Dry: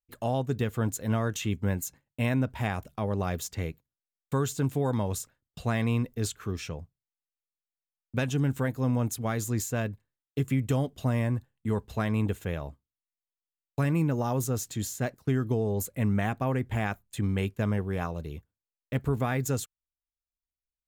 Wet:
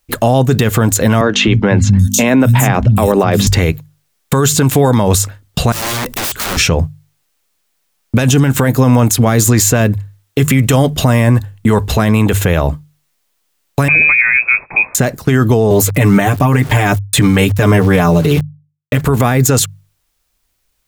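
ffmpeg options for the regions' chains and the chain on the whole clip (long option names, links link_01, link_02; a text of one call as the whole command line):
ffmpeg -i in.wav -filter_complex "[0:a]asettb=1/sr,asplit=3[link_01][link_02][link_03];[link_01]atrim=end=1.214[link_04];[link_02]atrim=start=1.21:end=3.47,asetpts=PTS-STARTPTS,afade=type=in:duration=0.004:curve=qsin,afade=type=out:start_time=2.256:duration=0.004:curve=qsin,aeval=exprs='val(0)+0.0126*(sin(2*PI*50*n/s)+sin(2*PI*2*50*n/s)/2+sin(2*PI*3*50*n/s)/3+sin(2*PI*4*50*n/s)/4+sin(2*PI*5*50*n/s)/5)':channel_layout=same,acrossover=split=180|4800[link_05][link_06][link_07];[link_05]adelay=260[link_08];[link_07]adelay=780[link_09];[link_08][link_06][link_09]amix=inputs=3:normalize=0,atrim=end_sample=99666[link_10];[link_03]atrim=start=3.466[link_11];[link_04][link_10]acrossfade=duration=0.004:curve1=hsin:curve2=qsin[link_12];[link_12][link_11]acrossfade=duration=0.004:curve1=qsin:curve2=hsin,asettb=1/sr,asplit=3[link_13][link_14][link_15];[link_13]atrim=end=5.724[link_16];[link_14]atrim=start=5.72:end=6.57,asetpts=PTS-STARTPTS,afade=type=in:duration=0.004:curve=qsin,afade=type=out:start_time=0.846:duration=0.004:curve=qsin,highshelf=frequency=4900:gain=6.5,acompressor=threshold=-38dB:ratio=4:attack=3.2:release=140:knee=1:detection=peak,aeval=exprs='(mod(141*val(0)+1,2)-1)/141':channel_layout=same[link_17];[link_15]atrim=start=6.566[link_18];[link_16][link_17]acrossfade=duration=0.004:curve1=hsin:curve2=qsin[link_19];[link_19][link_18]acrossfade=duration=0.004:curve1=qsin:curve2=hsin,asettb=1/sr,asplit=3[link_20][link_21][link_22];[link_20]atrim=end=13.884[link_23];[link_21]atrim=start=13.88:end=14.95,asetpts=PTS-STARTPTS,afade=type=in:duration=0.004:curve=qsin,afade=type=out:start_time=1.066:duration=0.004:curve=qsin,highpass=frequency=180:width=0.5412,highpass=frequency=180:width=1.3066,lowpass=frequency=2300:width_type=q:width=0.5098,lowpass=frequency=2300:width_type=q:width=0.6013,lowpass=frequency=2300:width_type=q:width=0.9,lowpass=frequency=2300:width_type=q:width=2.563,afreqshift=-2700[link_24];[link_22]atrim=start=14.946[link_25];[link_23][link_24]acrossfade=duration=0.004:curve1=hsin:curve2=qsin[link_26];[link_26][link_25]acrossfade=duration=0.004:curve1=qsin:curve2=hsin,asettb=1/sr,asplit=3[link_27][link_28][link_29];[link_27]atrim=end=15.704[link_30];[link_28]atrim=start=15.7:end=19.01,asetpts=PTS-STARTPTS,afade=type=in:duration=0.004:curve=qsin,afade=type=out:start_time=3.306:duration=0.004:curve=qsin,aecho=1:1:6.8:0.94,atrim=end_sample=145971,aeval=exprs='val(0)*gte(abs(val(0)),0.00335)':channel_layout=same[link_31];[link_29]atrim=start=19.006[link_32];[link_30][link_31]acrossfade=duration=0.004:curve1=hsin:curve2=qsin[link_33];[link_33][link_32]acrossfade=duration=0.004:curve1=qsin:curve2=hsin,bandreject=frequency=50:width_type=h:width=6,bandreject=frequency=100:width_type=h:width=6,bandreject=frequency=150:width_type=h:width=6,acrossover=split=650|5300[link_34][link_35][link_36];[link_34]acompressor=threshold=-33dB:ratio=4[link_37];[link_35]acompressor=threshold=-39dB:ratio=4[link_38];[link_36]acompressor=threshold=-39dB:ratio=4[link_39];[link_37][link_38][link_39]amix=inputs=3:normalize=0,alimiter=level_in=30.5dB:limit=-1dB:release=50:level=0:latency=1,volume=-1dB" out.wav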